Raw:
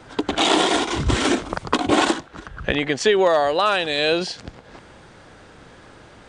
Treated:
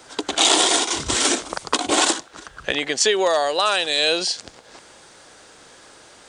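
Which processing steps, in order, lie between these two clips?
bass and treble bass −12 dB, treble +14 dB
level −1.5 dB

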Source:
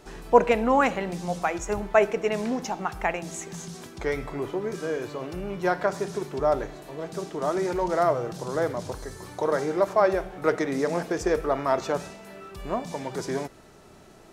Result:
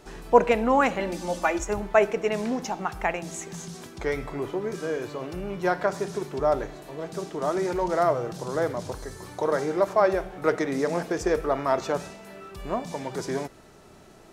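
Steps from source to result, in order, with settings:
0:00.99–0:01.64: comb filter 3.4 ms, depth 97%

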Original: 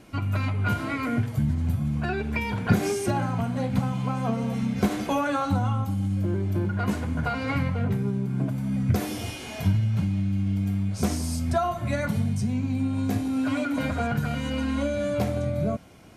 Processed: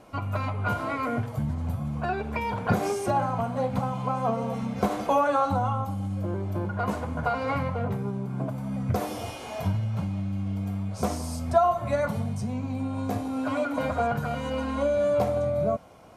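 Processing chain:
flat-topped bell 770 Hz +9.5 dB
level −4.5 dB

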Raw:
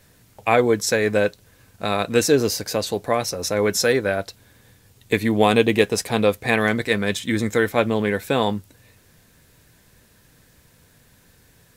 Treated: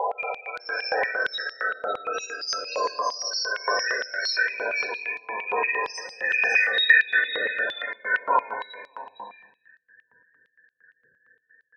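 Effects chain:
peak hold with a rise ahead of every peak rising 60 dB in 2.66 s
downward compressor 6 to 1, threshold −21 dBFS, peak gain reduction 13.5 dB
spectral peaks only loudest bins 16
parametric band 3,400 Hz +10.5 dB 0.71 octaves
multi-tap delay 357/548 ms −18.5/−4 dB
rectangular room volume 3,700 cubic metres, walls furnished, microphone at 4.6 metres
high-pass on a step sequencer 8.7 Hz 980–4,300 Hz

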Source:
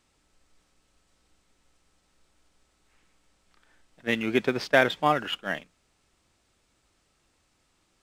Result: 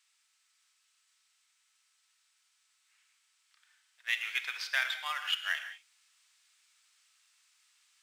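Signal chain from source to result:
speech leveller within 4 dB 0.5 s
Bessel high-pass filter 2,000 Hz, order 4
reverb whose tail is shaped and stops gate 210 ms flat, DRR 7.5 dB

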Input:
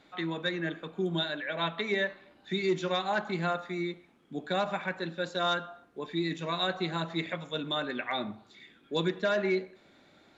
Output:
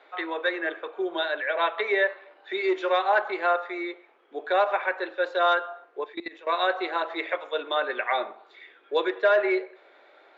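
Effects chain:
Butterworth high-pass 400 Hz 36 dB per octave
0:06.04–0:06.47: output level in coarse steps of 18 dB
low-pass filter 2,300 Hz 12 dB per octave
level +8.5 dB
Opus 96 kbit/s 48,000 Hz

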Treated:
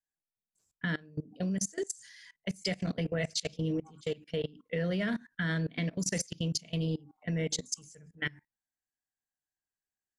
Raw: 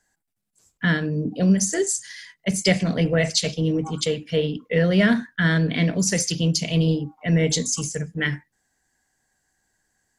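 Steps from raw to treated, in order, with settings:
output level in coarse steps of 23 dB
level −7.5 dB

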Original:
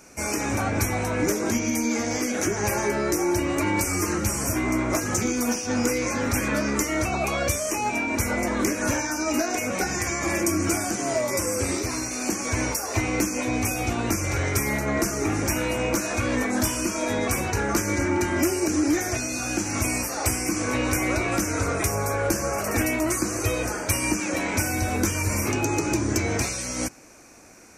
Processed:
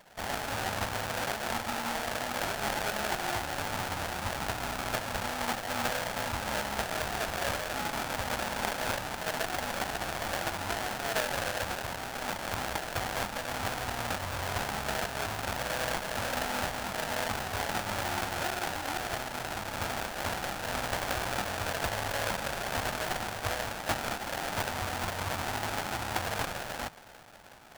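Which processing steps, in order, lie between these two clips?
parametric band 310 Hz −12.5 dB 0.28 octaves
delay with a band-pass on its return 463 ms, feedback 82%, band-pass 1,600 Hz, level −18 dB
sample-rate reduction 1,100 Hz, jitter 20%
low shelf with overshoot 580 Hz −11 dB, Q 1.5
level −1.5 dB

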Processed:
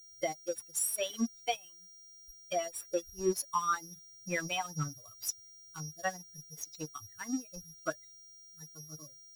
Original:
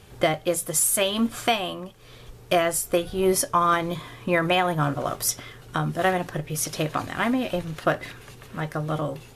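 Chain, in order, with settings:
spectral dynamics exaggerated over time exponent 3
steady tone 5,700 Hz −36 dBFS
dead-zone distortion −40 dBFS
level −5.5 dB

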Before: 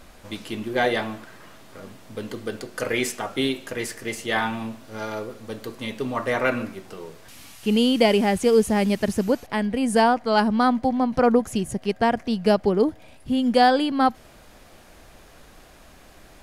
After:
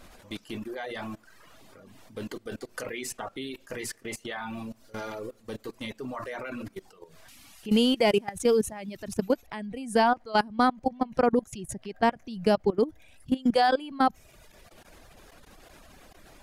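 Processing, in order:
in parallel at −1 dB: brickwall limiter −15.5 dBFS, peak gain reduction 9.5 dB
on the sum: mains-hum notches 60/120 Hz
output level in coarse steps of 15 dB
reverb reduction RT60 0.93 s
level −4.5 dB

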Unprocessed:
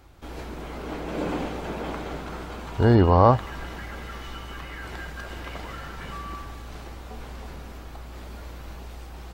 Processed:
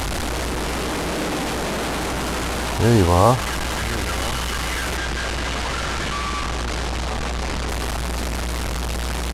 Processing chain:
linear delta modulator 64 kbit/s, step −19.5 dBFS
0:04.97–0:07.69: low-pass filter 7,500 Hz 12 dB per octave
single-tap delay 1,005 ms −16.5 dB
level +1.5 dB

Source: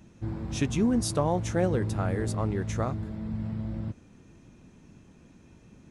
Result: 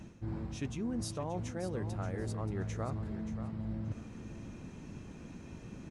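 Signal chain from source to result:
high-shelf EQ 8,800 Hz −6 dB
notch filter 3,500 Hz, Q 26
reversed playback
downward compressor 6 to 1, threshold −42 dBFS, peak gain reduction 20 dB
reversed playback
repeating echo 579 ms, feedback 23%, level −11 dB
level +6 dB

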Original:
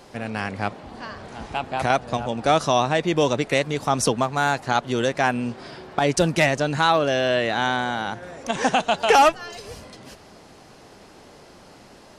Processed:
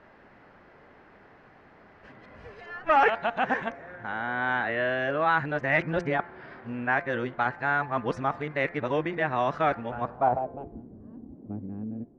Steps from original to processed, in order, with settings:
played backwards from end to start
low-pass filter sweep 1,800 Hz → 280 Hz, 0:09.91–0:10.83
hum removal 172.6 Hz, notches 14
level −8 dB

